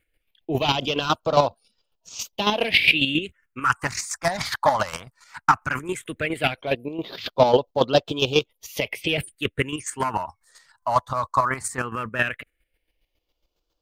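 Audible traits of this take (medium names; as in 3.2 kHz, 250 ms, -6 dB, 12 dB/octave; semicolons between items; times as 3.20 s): chopped level 7.3 Hz, depth 60%, duty 25%; phasing stages 4, 0.16 Hz, lowest notch 430–2000 Hz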